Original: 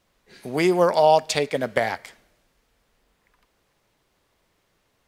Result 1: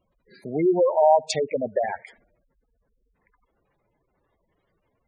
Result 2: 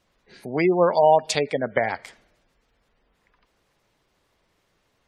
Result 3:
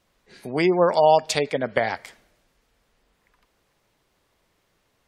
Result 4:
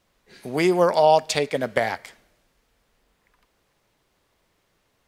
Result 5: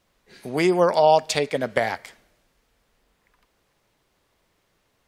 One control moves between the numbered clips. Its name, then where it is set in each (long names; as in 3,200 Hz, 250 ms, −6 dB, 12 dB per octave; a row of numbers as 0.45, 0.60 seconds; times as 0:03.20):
gate on every frequency bin, under each frame's peak: −10, −25, −35, −60, −50 decibels